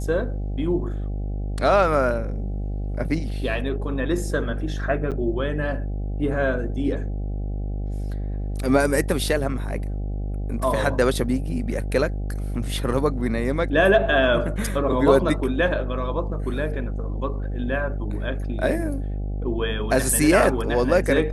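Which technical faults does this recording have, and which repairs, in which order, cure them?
mains buzz 50 Hz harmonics 16 −27 dBFS
0:05.11–0:05.12: drop-out 7.8 ms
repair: hum removal 50 Hz, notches 16
repair the gap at 0:05.11, 7.8 ms

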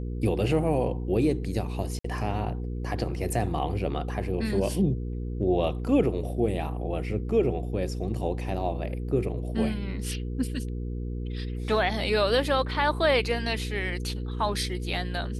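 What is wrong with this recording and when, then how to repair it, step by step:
mains hum 60 Hz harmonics 8 −32 dBFS
0:01.99–0:02.04: drop-out 54 ms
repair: hum removal 60 Hz, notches 8
repair the gap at 0:01.99, 54 ms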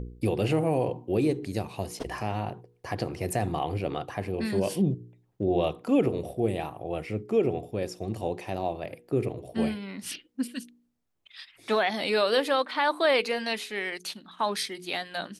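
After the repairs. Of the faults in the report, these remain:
none of them is left

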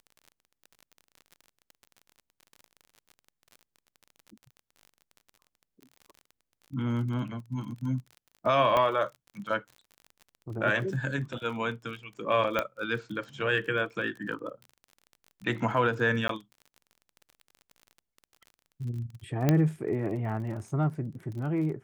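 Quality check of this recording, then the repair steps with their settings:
surface crackle 36 per second −39 dBFS
0:08.77: click −14 dBFS
0:12.59: click −13 dBFS
0:16.28–0:16.29: drop-out 13 ms
0:19.49: click −10 dBFS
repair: click removal
repair the gap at 0:16.28, 13 ms

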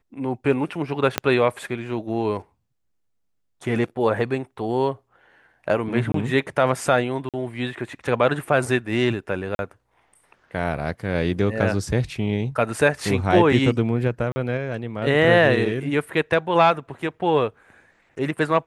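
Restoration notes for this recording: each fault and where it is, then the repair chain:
0:01.18: click −3 dBFS
0:06.12–0:06.14: drop-out 23 ms
0:07.29–0:07.34: drop-out 47 ms
0:09.55–0:09.59: drop-out 41 ms
0:14.32–0:14.36: drop-out 40 ms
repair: click removal
repair the gap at 0:06.12, 23 ms
repair the gap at 0:07.29, 47 ms
repair the gap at 0:09.55, 41 ms
repair the gap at 0:14.32, 40 ms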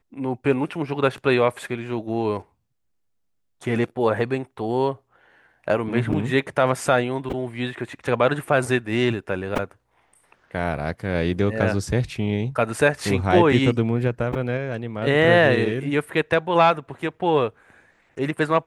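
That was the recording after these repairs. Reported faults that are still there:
0:01.18: click

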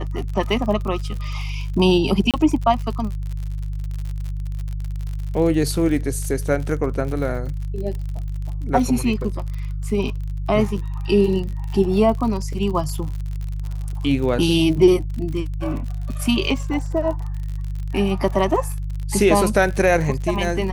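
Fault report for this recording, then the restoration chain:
surface crackle 56 per second −28 dBFS
mains hum 50 Hz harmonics 3 −26 dBFS
0:02.31–0:02.34: drop-out 27 ms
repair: click removal
hum removal 50 Hz, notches 3
repair the gap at 0:02.31, 27 ms

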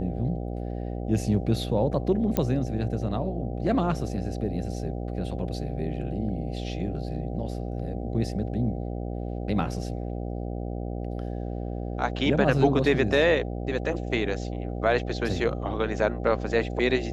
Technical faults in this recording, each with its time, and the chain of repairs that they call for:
mains buzz 60 Hz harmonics 13 −32 dBFS
0:02.37: click −11 dBFS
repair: click removal
hum removal 60 Hz, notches 13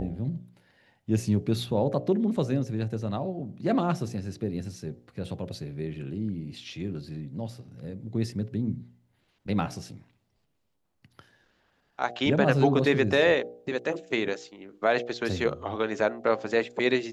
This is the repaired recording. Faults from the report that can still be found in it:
none of them is left

